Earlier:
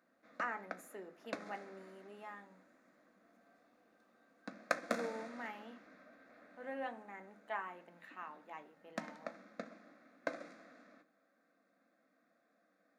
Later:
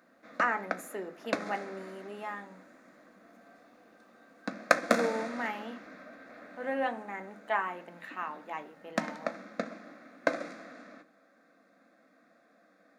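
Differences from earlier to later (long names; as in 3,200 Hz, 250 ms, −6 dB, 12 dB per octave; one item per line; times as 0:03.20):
speech +11.0 dB
background +11.5 dB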